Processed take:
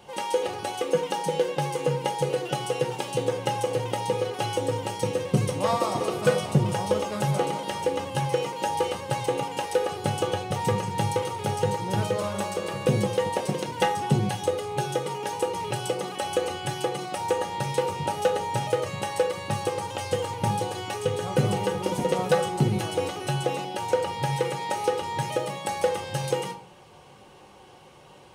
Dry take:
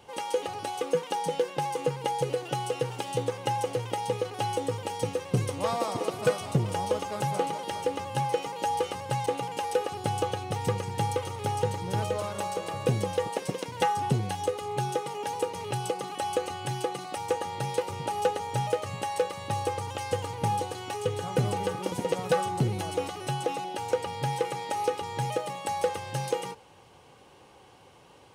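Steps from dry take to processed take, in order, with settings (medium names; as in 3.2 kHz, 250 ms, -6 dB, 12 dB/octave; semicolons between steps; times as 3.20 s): simulated room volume 300 m³, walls furnished, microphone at 1 m; trim +2.5 dB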